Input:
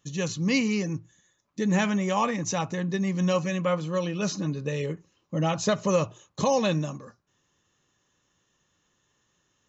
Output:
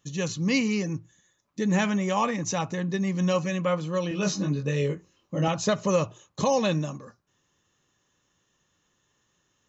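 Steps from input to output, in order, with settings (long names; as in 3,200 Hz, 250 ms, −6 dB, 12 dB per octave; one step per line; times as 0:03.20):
0:04.09–0:05.48: double-tracking delay 21 ms −2.5 dB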